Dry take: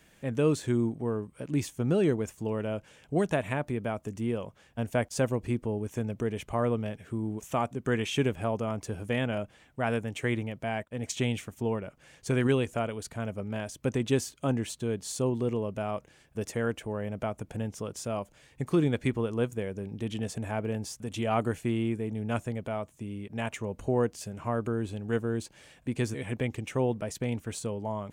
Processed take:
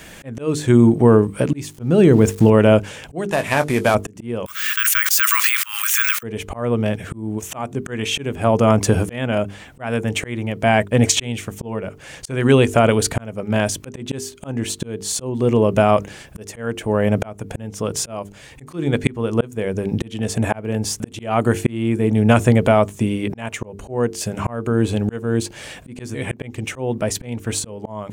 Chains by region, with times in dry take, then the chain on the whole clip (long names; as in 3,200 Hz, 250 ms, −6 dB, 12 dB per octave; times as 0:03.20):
0:01.70–0:02.50: centre clipping without the shift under −50 dBFS + low-shelf EQ 330 Hz +6 dB
0:03.28–0:03.95: variable-slope delta modulation 64 kbit/s + low-shelf EQ 460 Hz −9 dB + double-tracking delay 20 ms −10 dB
0:04.46–0:06.23: Butterworth high-pass 1,200 Hz 72 dB per octave + bad sample-rate conversion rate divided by 2×, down none, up zero stuff + envelope flattener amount 100%
whole clip: mains-hum notches 50/100/150/200/250/300/350/400/450 Hz; volume swells 691 ms; boost into a limiter +23 dB; level −2 dB